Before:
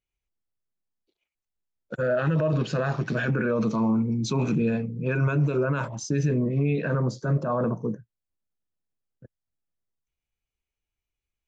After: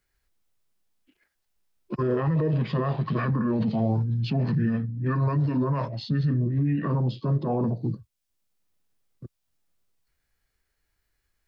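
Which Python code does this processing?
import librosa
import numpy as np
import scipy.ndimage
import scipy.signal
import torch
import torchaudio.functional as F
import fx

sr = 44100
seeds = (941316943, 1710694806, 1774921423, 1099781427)

y = fx.formant_shift(x, sr, semitones=-6)
y = fx.band_squash(y, sr, depth_pct=40)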